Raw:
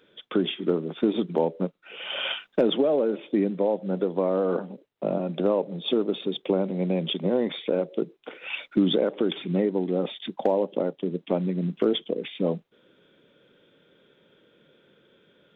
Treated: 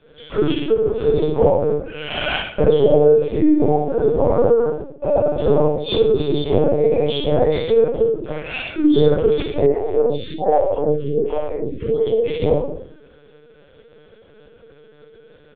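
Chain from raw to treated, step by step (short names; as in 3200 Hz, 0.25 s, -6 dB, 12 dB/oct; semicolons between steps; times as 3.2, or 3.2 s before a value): steep high-pass 280 Hz 48 dB/oct; high shelf 2300 Hz -10.5 dB; comb 6.7 ms, depth 86%; compressor 3:1, threshold -24 dBFS, peak gain reduction 8 dB; early reflections 17 ms -12.5 dB, 64 ms -3.5 dB; shoebox room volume 86 m³, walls mixed, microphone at 2.3 m; LPC vocoder at 8 kHz pitch kept; 9.66–12.07 photocell phaser 1.3 Hz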